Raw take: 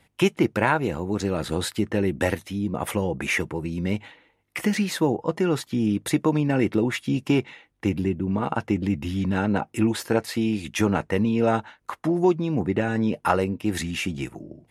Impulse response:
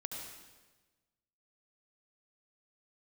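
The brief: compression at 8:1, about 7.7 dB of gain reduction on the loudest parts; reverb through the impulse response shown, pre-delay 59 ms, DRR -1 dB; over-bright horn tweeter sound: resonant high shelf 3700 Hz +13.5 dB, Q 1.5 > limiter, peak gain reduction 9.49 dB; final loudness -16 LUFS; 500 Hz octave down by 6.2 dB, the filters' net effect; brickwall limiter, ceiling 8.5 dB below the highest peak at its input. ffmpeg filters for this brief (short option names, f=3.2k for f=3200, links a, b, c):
-filter_complex "[0:a]equalizer=f=500:t=o:g=-8.5,acompressor=threshold=-26dB:ratio=8,alimiter=limit=-22dB:level=0:latency=1,asplit=2[a][b];[1:a]atrim=start_sample=2205,adelay=59[c];[b][c]afir=irnorm=-1:irlink=0,volume=1.5dB[d];[a][d]amix=inputs=2:normalize=0,highshelf=f=3.7k:t=q:w=1.5:g=13.5,volume=11.5dB,alimiter=limit=-5.5dB:level=0:latency=1"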